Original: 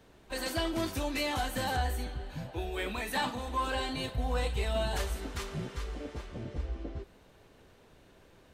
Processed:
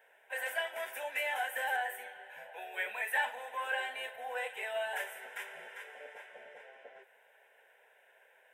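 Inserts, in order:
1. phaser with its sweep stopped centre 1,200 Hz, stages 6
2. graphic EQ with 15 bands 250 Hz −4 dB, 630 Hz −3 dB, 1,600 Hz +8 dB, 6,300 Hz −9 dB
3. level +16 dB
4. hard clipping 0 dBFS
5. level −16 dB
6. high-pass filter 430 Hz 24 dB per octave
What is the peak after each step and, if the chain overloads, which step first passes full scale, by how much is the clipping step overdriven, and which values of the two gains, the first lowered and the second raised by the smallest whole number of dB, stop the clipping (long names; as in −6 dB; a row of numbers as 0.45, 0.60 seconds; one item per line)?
−21.5, −20.5, −4.5, −4.5, −20.5, −20.5 dBFS
no step passes full scale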